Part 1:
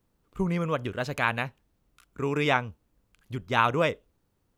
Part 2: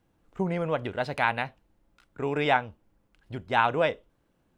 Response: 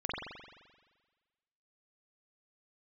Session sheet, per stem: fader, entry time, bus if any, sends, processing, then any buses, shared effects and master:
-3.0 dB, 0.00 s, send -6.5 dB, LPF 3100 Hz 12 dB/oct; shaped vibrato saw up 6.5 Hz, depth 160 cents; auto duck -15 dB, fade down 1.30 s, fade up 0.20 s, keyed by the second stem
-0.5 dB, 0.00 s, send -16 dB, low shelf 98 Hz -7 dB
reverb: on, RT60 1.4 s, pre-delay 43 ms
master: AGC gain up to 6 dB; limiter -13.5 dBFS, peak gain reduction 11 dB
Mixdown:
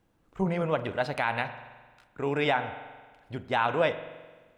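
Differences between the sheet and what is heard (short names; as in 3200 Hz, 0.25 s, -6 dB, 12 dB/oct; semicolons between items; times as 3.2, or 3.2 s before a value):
stem 1: send off; master: missing AGC gain up to 6 dB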